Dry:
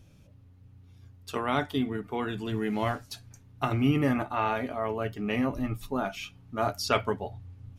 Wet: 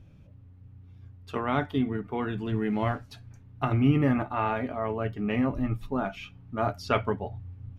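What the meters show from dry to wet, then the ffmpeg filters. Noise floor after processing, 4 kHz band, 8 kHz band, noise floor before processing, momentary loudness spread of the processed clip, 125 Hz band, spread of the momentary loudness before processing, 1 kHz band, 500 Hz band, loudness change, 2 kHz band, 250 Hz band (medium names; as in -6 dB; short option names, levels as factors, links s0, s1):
-52 dBFS, -5.5 dB, under -10 dB, -55 dBFS, 12 LU, +3.5 dB, 11 LU, 0.0 dB, +0.5 dB, +1.0 dB, -1.0 dB, +2.0 dB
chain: -af "bass=f=250:g=4,treble=f=4000:g=-14"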